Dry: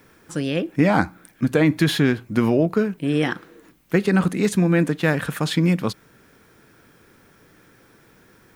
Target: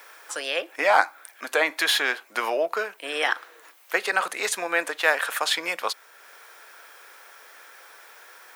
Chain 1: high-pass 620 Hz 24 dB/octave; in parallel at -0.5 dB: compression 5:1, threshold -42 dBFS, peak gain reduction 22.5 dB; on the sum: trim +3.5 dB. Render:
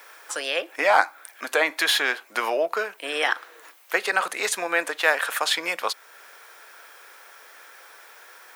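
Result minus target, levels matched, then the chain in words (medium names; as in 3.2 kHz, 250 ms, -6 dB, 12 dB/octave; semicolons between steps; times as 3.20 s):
compression: peak gain reduction -9 dB
high-pass 620 Hz 24 dB/octave; in parallel at -0.5 dB: compression 5:1, threshold -53.5 dBFS, peak gain reduction 31.5 dB; on the sum: trim +3.5 dB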